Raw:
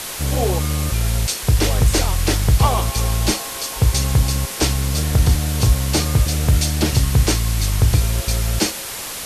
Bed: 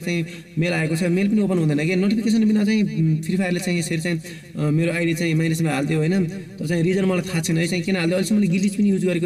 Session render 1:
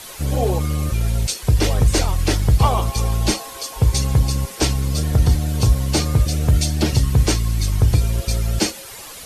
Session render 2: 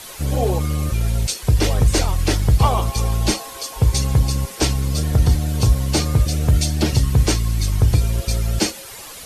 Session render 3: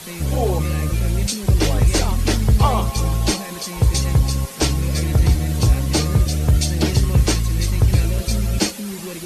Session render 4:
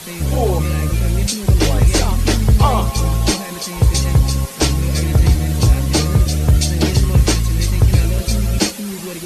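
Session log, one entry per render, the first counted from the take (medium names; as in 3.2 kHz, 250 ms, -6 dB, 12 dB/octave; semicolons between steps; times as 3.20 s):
noise reduction 10 dB, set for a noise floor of -29 dBFS
no audible change
add bed -11.5 dB
trim +3 dB; peak limiter -3 dBFS, peak gain reduction 1 dB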